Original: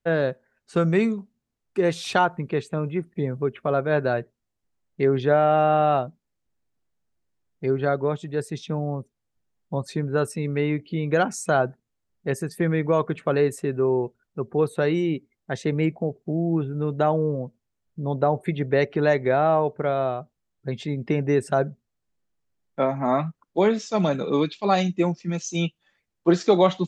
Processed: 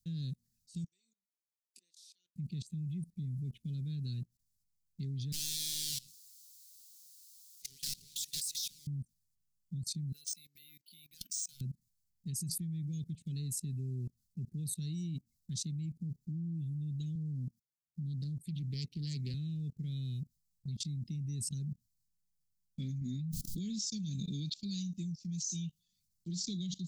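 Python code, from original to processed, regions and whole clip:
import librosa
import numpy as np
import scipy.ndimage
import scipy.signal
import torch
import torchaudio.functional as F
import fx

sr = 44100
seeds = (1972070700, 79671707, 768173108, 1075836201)

y = fx.chain(x, sr, fx.gate_flip(shuts_db=-26.0, range_db=-27),
    fx.highpass(hz=490.0, slope=24),
    fx.doubler(ms=22.0, db=-11), at=(0.84, 2.36))
y = fx.chain(y, sr, fx.bessel_highpass(hz=1300.0, order=4),
    fx.power_curve(exponent=0.5),
    fx.doppler_dist(depth_ms=0.37), at=(5.32, 8.87))
y = fx.chain(y, sr, fx.highpass(hz=1300.0, slope=12),
    fx.clip_hard(threshold_db=-24.5),
    fx.resample_linear(factor=3), at=(10.12, 11.61))
y = fx.chain(y, sr, fx.highpass(hz=120.0, slope=12),
    fx.doppler_dist(depth_ms=0.23), at=(17.15, 19.34))
y = fx.chain(y, sr, fx.low_shelf(hz=440.0, db=3.0),
    fx.pre_swell(db_per_s=32.0), at=(23.01, 23.59))
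y = scipy.signal.sosfilt(scipy.signal.ellip(3, 1.0, 80, [180.0, 4400.0], 'bandstop', fs=sr, output='sos'), y)
y = fx.high_shelf(y, sr, hz=5800.0, db=10.0)
y = fx.level_steps(y, sr, step_db=21)
y = y * librosa.db_to_amplitude(4.5)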